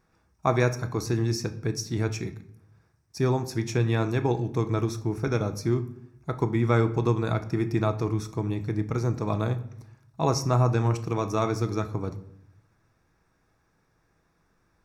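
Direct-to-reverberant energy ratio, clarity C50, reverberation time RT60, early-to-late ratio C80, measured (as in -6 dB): 9.0 dB, 15.0 dB, 0.70 s, 18.0 dB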